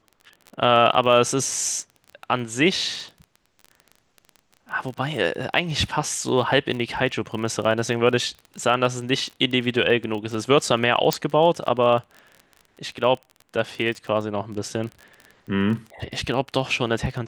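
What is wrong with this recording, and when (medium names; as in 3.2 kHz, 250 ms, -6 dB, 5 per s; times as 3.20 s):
crackle 23 per s -30 dBFS
11.13 s: pop -5 dBFS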